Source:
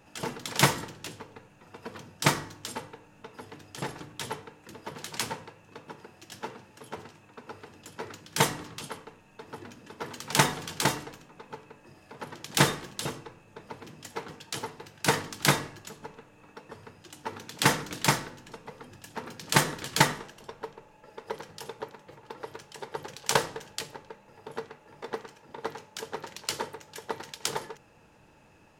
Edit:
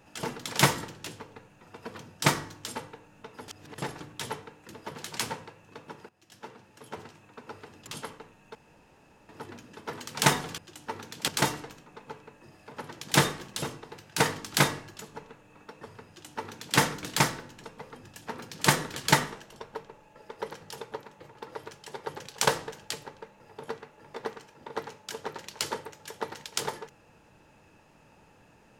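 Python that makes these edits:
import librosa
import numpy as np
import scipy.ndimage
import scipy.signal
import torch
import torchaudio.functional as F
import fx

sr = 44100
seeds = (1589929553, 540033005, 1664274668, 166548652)

y = fx.edit(x, sr, fx.reverse_span(start_s=3.48, length_s=0.3),
    fx.fade_in_from(start_s=6.09, length_s=0.95, floor_db=-17.5),
    fx.cut(start_s=7.87, length_s=0.87),
    fx.insert_room_tone(at_s=9.42, length_s=0.74),
    fx.cut(start_s=13.27, length_s=1.45),
    fx.duplicate(start_s=16.95, length_s=0.7, to_s=10.71), tone=tone)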